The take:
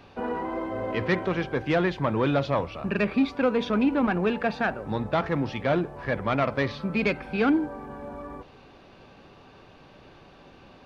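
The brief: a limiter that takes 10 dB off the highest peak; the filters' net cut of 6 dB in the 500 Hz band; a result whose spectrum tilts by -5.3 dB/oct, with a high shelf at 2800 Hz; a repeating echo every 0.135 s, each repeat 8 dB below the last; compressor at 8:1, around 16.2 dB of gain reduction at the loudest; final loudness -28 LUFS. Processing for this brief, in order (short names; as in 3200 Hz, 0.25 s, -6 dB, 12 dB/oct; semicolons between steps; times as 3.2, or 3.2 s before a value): bell 500 Hz -7.5 dB; high shelf 2800 Hz -3.5 dB; compressor 8:1, threshold -38 dBFS; limiter -35 dBFS; feedback echo 0.135 s, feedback 40%, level -8 dB; gain +16.5 dB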